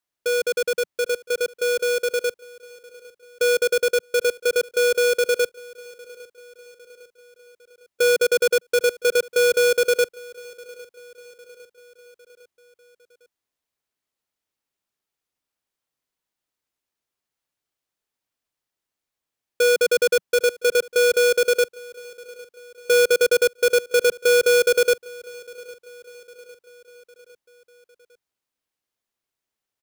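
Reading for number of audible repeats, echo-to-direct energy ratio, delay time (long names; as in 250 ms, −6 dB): 3, −20.5 dB, 805 ms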